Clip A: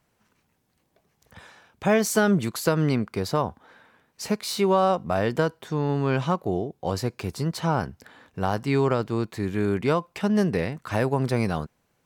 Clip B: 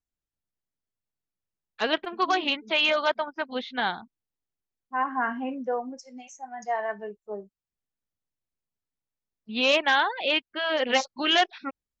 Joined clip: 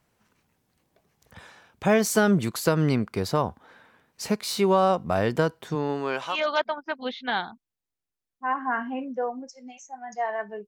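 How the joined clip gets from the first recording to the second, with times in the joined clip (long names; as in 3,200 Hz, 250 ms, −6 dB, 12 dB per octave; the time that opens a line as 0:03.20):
clip A
0:05.74–0:06.46: high-pass filter 170 Hz → 1,100 Hz
0:06.37: continue with clip B from 0:02.87, crossfade 0.18 s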